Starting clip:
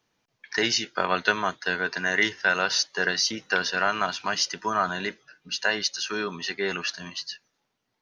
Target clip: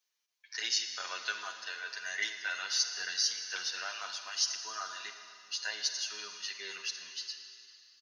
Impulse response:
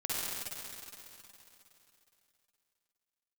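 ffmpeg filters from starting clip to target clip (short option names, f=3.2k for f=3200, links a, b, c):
-filter_complex "[0:a]highpass=f=190:p=1,aderivative,asplit=2[a][b];[1:a]atrim=start_sample=2205,asetrate=52920,aresample=44100,lowpass=8.1k[c];[b][c]afir=irnorm=-1:irlink=0,volume=-9dB[d];[a][d]amix=inputs=2:normalize=0,asplit=2[e][f];[f]adelay=8.1,afreqshift=-0.28[g];[e][g]amix=inputs=2:normalize=1"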